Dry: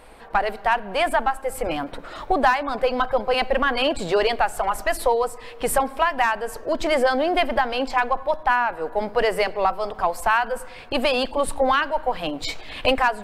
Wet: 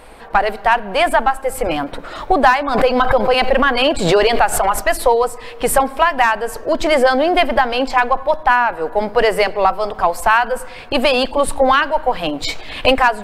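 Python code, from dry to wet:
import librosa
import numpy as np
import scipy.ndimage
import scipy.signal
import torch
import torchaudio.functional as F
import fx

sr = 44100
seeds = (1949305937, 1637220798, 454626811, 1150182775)

y = fx.pre_swell(x, sr, db_per_s=59.0, at=(2.67, 4.78), fade=0.02)
y = y * 10.0 ** (6.5 / 20.0)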